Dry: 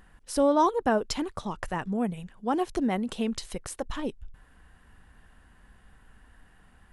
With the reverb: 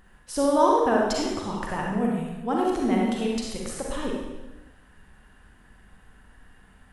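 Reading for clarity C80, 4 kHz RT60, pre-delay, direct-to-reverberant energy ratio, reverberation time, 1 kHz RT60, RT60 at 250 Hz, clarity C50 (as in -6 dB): 2.5 dB, 1.0 s, 36 ms, -2.5 dB, 1.1 s, 1.1 s, 1.2 s, -1.0 dB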